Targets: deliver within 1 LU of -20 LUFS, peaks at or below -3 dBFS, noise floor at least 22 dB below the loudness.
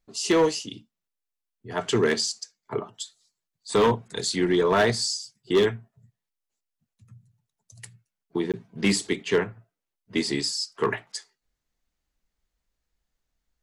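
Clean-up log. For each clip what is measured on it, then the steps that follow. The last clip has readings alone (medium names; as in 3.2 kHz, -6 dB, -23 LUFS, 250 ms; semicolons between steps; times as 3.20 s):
clipped samples 0.5%; clipping level -14.5 dBFS; dropouts 1; longest dropout 17 ms; loudness -25.5 LUFS; peak level -14.5 dBFS; loudness target -20.0 LUFS
-> clip repair -14.5 dBFS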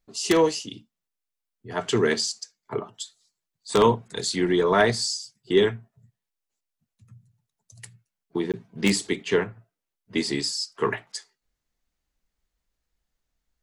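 clipped samples 0.0%; dropouts 1; longest dropout 17 ms
-> interpolate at 8.52 s, 17 ms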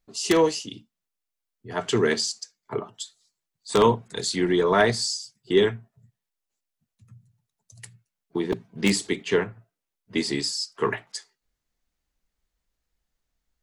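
dropouts 0; loudness -24.5 LUFS; peak level -5.5 dBFS; loudness target -20.0 LUFS
-> trim +4.5 dB; peak limiter -3 dBFS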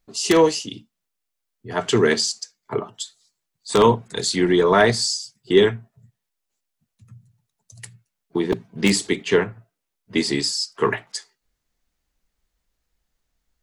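loudness -20.5 LUFS; peak level -3.0 dBFS; noise floor -80 dBFS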